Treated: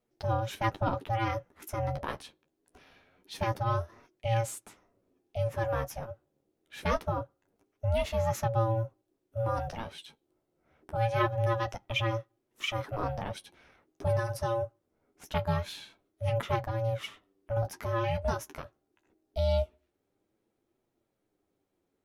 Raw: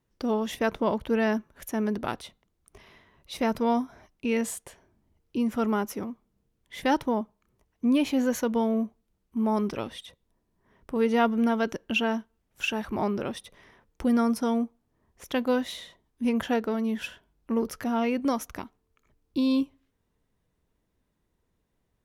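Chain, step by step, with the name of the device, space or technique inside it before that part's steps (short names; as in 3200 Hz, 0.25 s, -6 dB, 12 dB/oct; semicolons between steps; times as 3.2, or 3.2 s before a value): alien voice (ring modulator 340 Hz; flange 0.24 Hz, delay 8.2 ms, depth 5.7 ms, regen -26%); gain +2 dB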